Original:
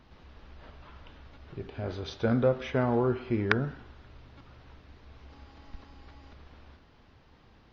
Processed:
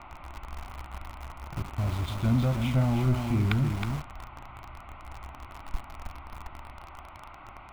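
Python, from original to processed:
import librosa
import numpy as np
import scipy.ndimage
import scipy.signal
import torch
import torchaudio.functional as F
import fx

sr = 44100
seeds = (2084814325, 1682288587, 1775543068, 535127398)

p1 = fx.peak_eq(x, sr, hz=1000.0, db=-10.0, octaves=0.69)
p2 = p1 + fx.echo_single(p1, sr, ms=317, db=-7.0, dry=0)
p3 = fx.env_lowpass(p2, sr, base_hz=950.0, full_db=-27.0)
p4 = fx.dmg_noise_band(p3, sr, seeds[0], low_hz=310.0, high_hz=1900.0, level_db=-45.0)
p5 = fx.fixed_phaser(p4, sr, hz=1700.0, stages=6)
p6 = fx.quant_companded(p5, sr, bits=2)
p7 = p5 + F.gain(torch.from_numpy(p6), -11.5).numpy()
y = fx.low_shelf(p7, sr, hz=110.0, db=10.0)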